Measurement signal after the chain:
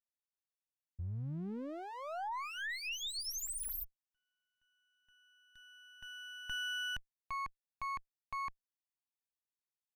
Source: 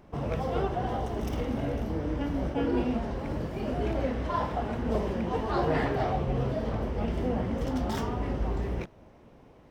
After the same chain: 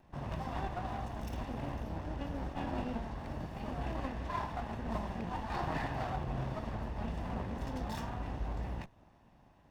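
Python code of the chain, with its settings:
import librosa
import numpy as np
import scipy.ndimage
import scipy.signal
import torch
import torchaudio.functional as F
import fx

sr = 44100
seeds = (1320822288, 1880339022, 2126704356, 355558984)

y = fx.lower_of_two(x, sr, delay_ms=1.1)
y = F.gain(torch.from_numpy(y), -7.0).numpy()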